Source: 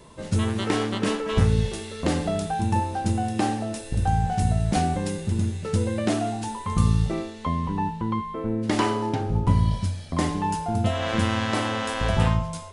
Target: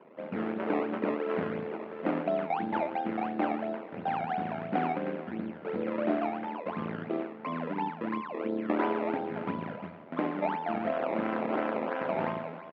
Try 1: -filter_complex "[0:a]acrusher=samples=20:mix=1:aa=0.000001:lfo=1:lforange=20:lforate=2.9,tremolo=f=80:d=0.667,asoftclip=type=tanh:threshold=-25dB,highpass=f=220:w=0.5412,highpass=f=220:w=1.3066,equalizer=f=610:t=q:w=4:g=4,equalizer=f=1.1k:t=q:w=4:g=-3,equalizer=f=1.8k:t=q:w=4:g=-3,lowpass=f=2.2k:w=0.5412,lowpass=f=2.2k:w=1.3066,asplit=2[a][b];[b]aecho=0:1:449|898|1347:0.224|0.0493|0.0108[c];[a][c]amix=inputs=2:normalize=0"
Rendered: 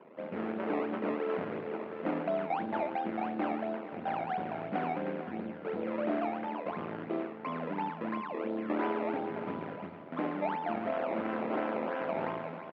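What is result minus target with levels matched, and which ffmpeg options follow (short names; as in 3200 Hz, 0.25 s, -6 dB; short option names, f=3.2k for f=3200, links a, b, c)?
soft clip: distortion +9 dB; echo-to-direct +8 dB
-filter_complex "[0:a]acrusher=samples=20:mix=1:aa=0.000001:lfo=1:lforange=20:lforate=2.9,tremolo=f=80:d=0.667,asoftclip=type=tanh:threshold=-15.5dB,highpass=f=220:w=0.5412,highpass=f=220:w=1.3066,equalizer=f=610:t=q:w=4:g=4,equalizer=f=1.1k:t=q:w=4:g=-3,equalizer=f=1.8k:t=q:w=4:g=-3,lowpass=f=2.2k:w=0.5412,lowpass=f=2.2k:w=1.3066,asplit=2[a][b];[b]aecho=0:1:449|898:0.0891|0.0196[c];[a][c]amix=inputs=2:normalize=0"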